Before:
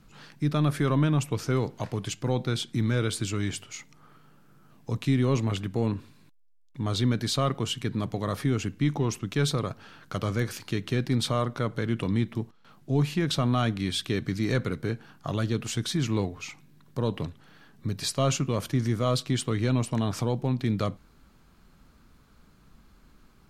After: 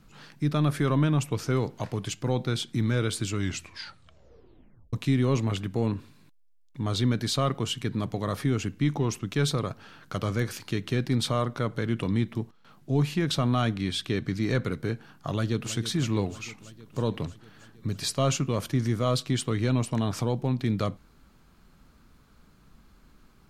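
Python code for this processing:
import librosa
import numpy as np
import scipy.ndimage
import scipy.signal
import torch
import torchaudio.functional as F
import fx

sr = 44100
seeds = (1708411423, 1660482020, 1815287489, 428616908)

y = fx.high_shelf(x, sr, hz=7900.0, db=-6.5, at=(13.76, 14.64))
y = fx.echo_throw(y, sr, start_s=15.32, length_s=0.44, ms=320, feedback_pct=75, wet_db=-14.0)
y = fx.edit(y, sr, fx.tape_stop(start_s=3.38, length_s=1.55), tone=tone)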